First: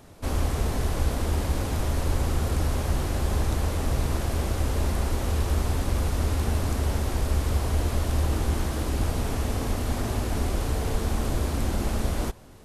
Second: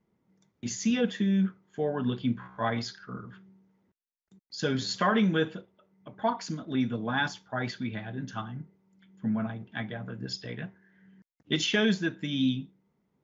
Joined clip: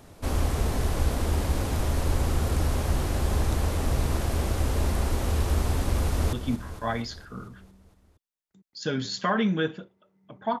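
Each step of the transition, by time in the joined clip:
first
6.02–6.33 echo throw 0.23 s, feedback 65%, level -10.5 dB
6.33 switch to second from 2.1 s

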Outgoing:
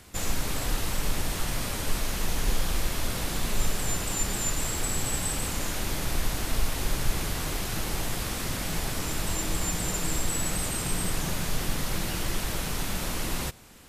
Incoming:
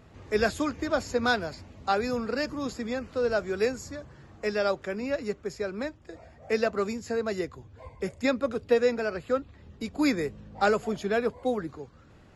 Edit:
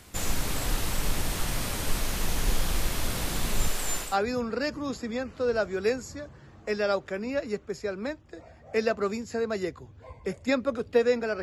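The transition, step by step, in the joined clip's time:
outgoing
3.68–4.18 bell 100 Hz -12.5 dB 2.4 oct
4.08 switch to incoming from 1.84 s, crossfade 0.20 s

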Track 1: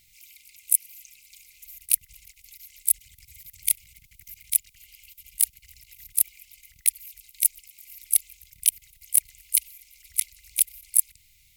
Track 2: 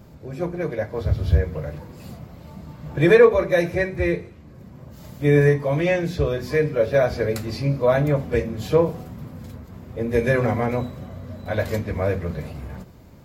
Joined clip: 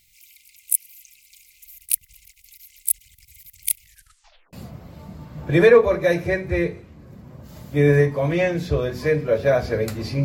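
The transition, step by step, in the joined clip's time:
track 1
3.81 tape stop 0.72 s
4.53 switch to track 2 from 2.01 s

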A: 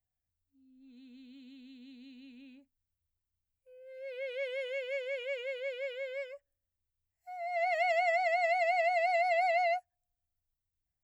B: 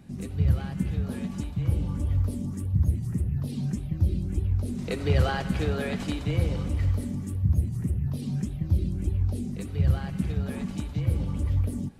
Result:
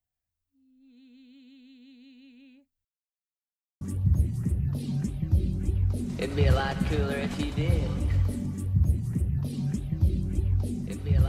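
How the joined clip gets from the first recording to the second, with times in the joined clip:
A
2.85–3.81 mute
3.81 switch to B from 2.5 s

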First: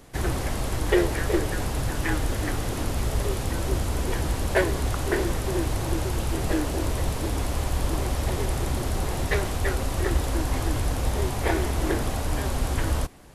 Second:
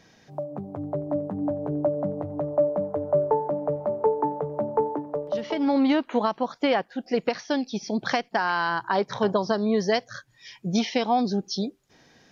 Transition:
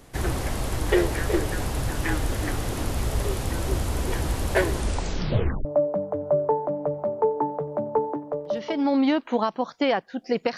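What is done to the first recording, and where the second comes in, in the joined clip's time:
first
4.7 tape stop 0.95 s
5.65 switch to second from 2.47 s

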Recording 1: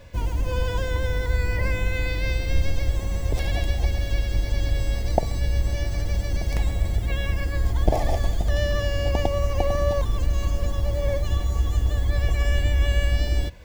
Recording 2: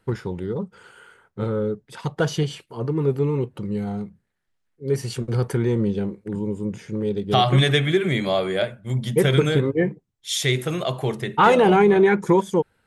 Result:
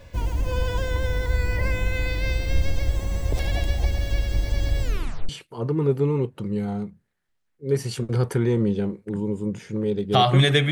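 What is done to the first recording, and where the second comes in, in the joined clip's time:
recording 1
4.82 tape stop 0.47 s
5.29 switch to recording 2 from 2.48 s

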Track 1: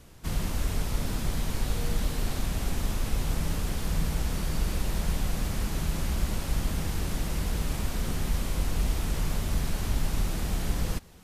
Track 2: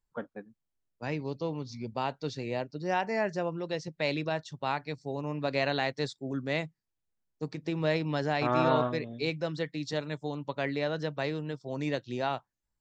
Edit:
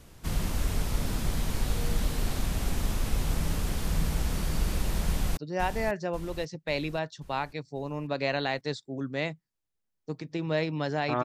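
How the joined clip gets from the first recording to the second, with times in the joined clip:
track 1
5.05–5.37 echo throw 0.54 s, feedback 50%, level -7.5 dB
5.37 switch to track 2 from 2.7 s

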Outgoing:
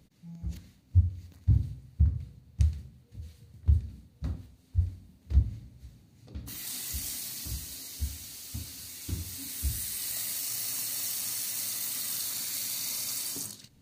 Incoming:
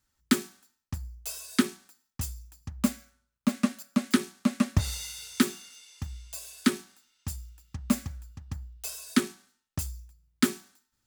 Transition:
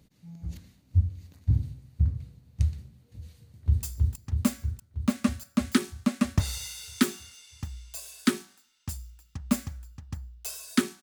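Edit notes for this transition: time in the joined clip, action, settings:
outgoing
3.44–3.83 echo throw 0.32 s, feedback 70%, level -1.5 dB
3.83 switch to incoming from 2.22 s

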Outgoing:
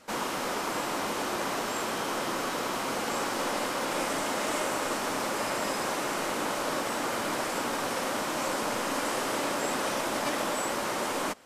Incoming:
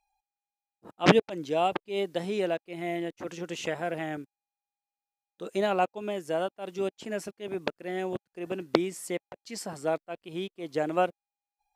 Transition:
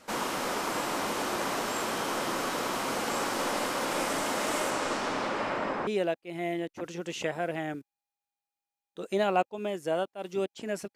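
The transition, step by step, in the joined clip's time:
outgoing
4.7–5.87 LPF 9500 Hz -> 1600 Hz
5.87 switch to incoming from 2.3 s

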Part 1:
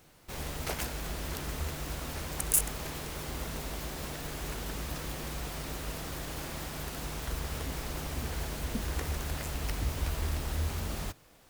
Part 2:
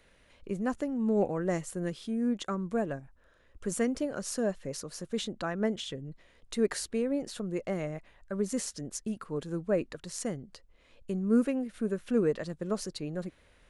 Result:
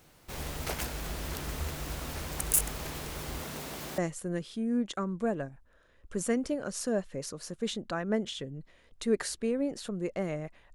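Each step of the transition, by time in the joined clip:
part 1
3.41–3.98 HPF 120 Hz 12 dB/oct
3.98 switch to part 2 from 1.49 s

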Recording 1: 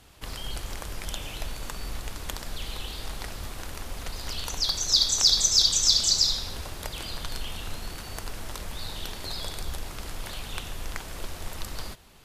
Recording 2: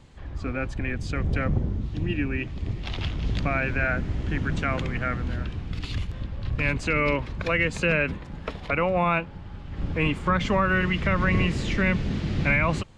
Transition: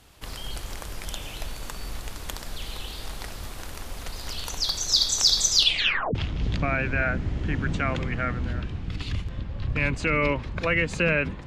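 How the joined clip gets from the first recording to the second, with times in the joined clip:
recording 1
5.51 tape stop 0.64 s
6.15 switch to recording 2 from 2.98 s

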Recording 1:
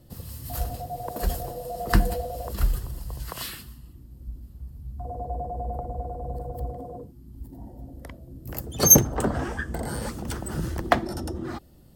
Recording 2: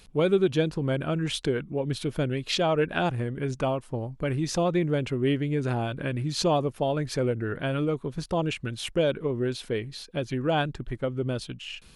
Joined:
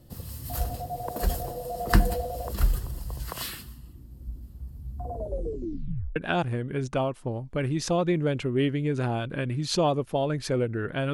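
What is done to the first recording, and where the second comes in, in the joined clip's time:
recording 1
5.11 tape stop 1.05 s
6.16 switch to recording 2 from 2.83 s

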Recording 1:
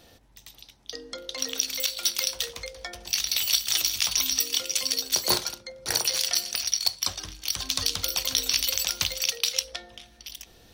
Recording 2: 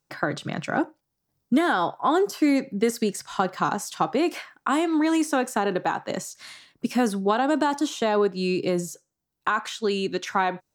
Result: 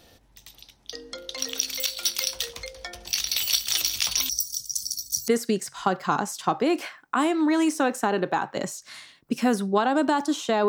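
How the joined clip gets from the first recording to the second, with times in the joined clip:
recording 1
4.29–5.28 elliptic band-stop 160–5700 Hz, stop band 40 dB
5.28 switch to recording 2 from 2.81 s

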